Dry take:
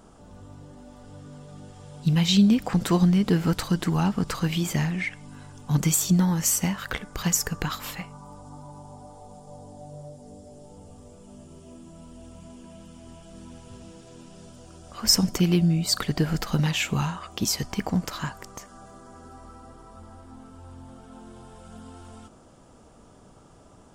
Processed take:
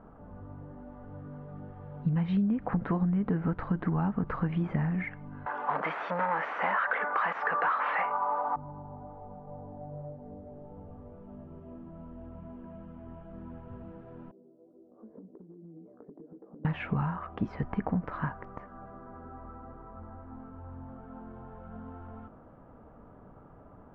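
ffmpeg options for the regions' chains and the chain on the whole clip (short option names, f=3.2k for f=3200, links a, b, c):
-filter_complex "[0:a]asettb=1/sr,asplit=3[a][b][c];[a]atrim=end=5.464[d];[b]atrim=start=5.46:end=8.56,asetpts=PTS-STARTPTS,afade=t=in:d=0.004:c=qsin,afade=t=out:st=3.096:d=0.004:c=qsin,asplit=2[e][f];[f]highpass=f=720:p=1,volume=31dB,asoftclip=type=tanh:threshold=-9dB[g];[e][g]amix=inputs=2:normalize=0,lowpass=f=2.3k:p=1,volume=-6dB,highpass=680,lowpass=7.2k[h];[c]atrim=start=8.556[i];[d][h]acrossfade=d=0.004:c1=hsin:c2=qsin[j];[j][i]acrossfade=d=0.004:c1=qsin:c2=hsin,asettb=1/sr,asplit=3[k][l][m];[k]atrim=end=14.314[n];[l]atrim=start=14.31:end=16.65,asetpts=PTS-STARTPTS,afade=t=in:d=0.004:c=qsin,afade=t=out:st=2.336:d=0.004:c=qsin,asuperpass=centerf=360:order=4:qfactor=1.6,flanger=delay=15.5:depth=2.8:speed=1.9,acompressor=threshold=-44dB:ratio=20:attack=3.2:release=140:knee=1:detection=peak[o];[m]atrim=start=16.646[p];[n][o]acrossfade=d=0.004:c1=hsin:c2=qsin[q];[q][p]acrossfade=d=0.004:c1=qsin:c2=hsin,lowpass=f=1.7k:w=0.5412,lowpass=f=1.7k:w=1.3066,bandreject=f=360:w=12,acompressor=threshold=-25dB:ratio=6"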